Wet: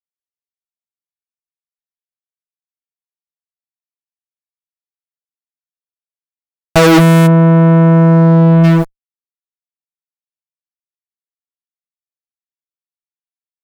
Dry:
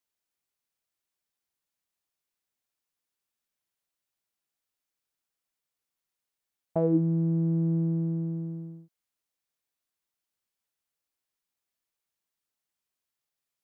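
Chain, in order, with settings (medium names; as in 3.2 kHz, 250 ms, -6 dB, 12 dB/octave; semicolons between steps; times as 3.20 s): fuzz box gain 50 dB, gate -50 dBFS; 7.26–8.63 s: low-pass 1.2 kHz -> 1.3 kHz 12 dB/octave; loudness maximiser +16 dB; trim -3 dB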